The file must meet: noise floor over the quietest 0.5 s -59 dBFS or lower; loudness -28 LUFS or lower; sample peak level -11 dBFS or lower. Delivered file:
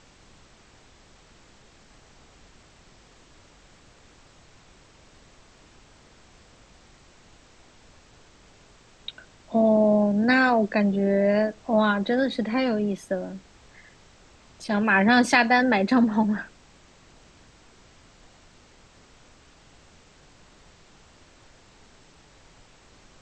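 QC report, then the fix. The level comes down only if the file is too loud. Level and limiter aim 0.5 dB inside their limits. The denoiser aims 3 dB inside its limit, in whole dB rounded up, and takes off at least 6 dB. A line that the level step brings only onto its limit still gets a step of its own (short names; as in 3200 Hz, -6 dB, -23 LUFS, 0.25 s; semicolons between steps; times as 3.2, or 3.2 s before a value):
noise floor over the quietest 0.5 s -54 dBFS: fail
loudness -22.0 LUFS: fail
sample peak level -5.0 dBFS: fail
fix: gain -6.5 dB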